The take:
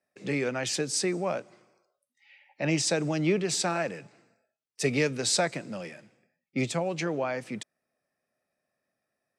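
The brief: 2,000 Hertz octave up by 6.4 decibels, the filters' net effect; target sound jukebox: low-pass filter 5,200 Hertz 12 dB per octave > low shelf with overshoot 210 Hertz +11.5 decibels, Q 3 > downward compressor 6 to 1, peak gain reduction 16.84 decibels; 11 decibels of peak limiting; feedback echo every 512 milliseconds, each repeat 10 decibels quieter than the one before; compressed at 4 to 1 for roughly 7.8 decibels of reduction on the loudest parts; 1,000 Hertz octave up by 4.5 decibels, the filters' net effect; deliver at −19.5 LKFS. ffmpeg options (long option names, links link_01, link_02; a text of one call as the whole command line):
ffmpeg -i in.wav -af "equalizer=frequency=1000:width_type=o:gain=6,equalizer=frequency=2000:width_type=o:gain=6.5,acompressor=threshold=-28dB:ratio=4,alimiter=level_in=4dB:limit=-24dB:level=0:latency=1,volume=-4dB,lowpass=5200,lowshelf=frequency=210:width_type=q:width=3:gain=11.5,aecho=1:1:512|1024|1536|2048:0.316|0.101|0.0324|0.0104,acompressor=threshold=-36dB:ratio=6,volume=21dB" out.wav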